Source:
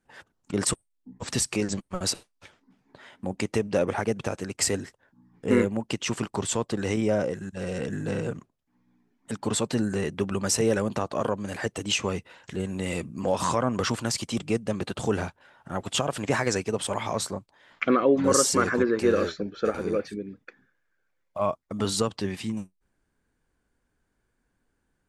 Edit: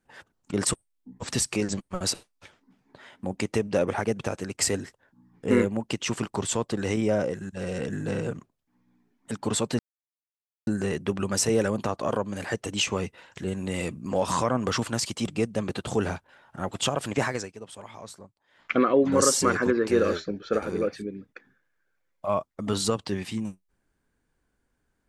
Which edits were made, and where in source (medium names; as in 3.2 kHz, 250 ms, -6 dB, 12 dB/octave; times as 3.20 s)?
9.79 s: insert silence 0.88 s
16.31–17.85 s: dip -14 dB, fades 0.30 s